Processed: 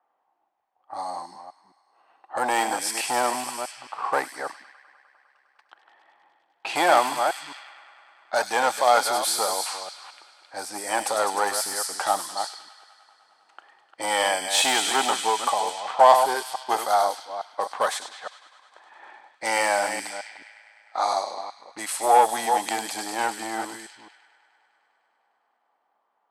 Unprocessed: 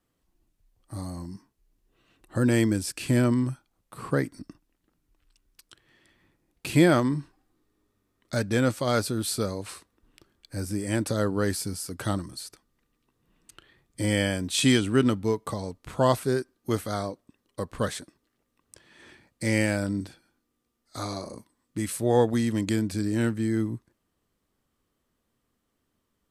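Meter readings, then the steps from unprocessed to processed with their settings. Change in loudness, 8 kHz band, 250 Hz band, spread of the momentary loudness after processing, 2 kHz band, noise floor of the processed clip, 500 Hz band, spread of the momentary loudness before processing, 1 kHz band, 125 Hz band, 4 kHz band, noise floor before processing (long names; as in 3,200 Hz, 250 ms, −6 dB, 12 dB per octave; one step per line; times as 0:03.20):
+2.5 dB, +7.5 dB, −13.5 dB, 17 LU, +6.0 dB, −72 dBFS, +2.0 dB, 17 LU, +14.0 dB, below −25 dB, +6.5 dB, −77 dBFS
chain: delay that plays each chunk backwards 215 ms, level −9 dB
delay with a high-pass on its return 101 ms, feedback 84%, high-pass 3,700 Hz, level −5 dB
in parallel at −5 dB: wave folding −20.5 dBFS
on the sum: low-pass that shuts in the quiet parts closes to 1,500 Hz, open at −22 dBFS
high-pass with resonance 800 Hz, resonance Q 6.7
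level +1 dB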